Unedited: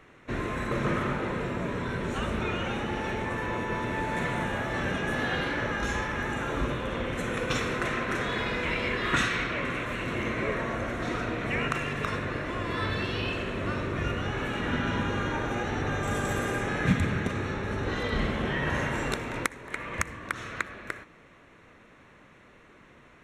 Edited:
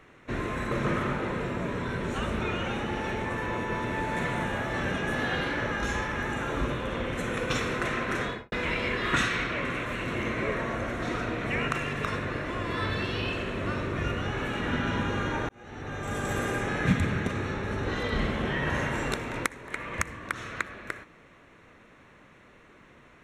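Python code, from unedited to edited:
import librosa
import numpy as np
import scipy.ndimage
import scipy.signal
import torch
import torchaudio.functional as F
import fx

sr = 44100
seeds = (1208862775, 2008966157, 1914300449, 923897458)

y = fx.studio_fade_out(x, sr, start_s=8.22, length_s=0.3)
y = fx.edit(y, sr, fx.fade_in_span(start_s=15.49, length_s=0.91), tone=tone)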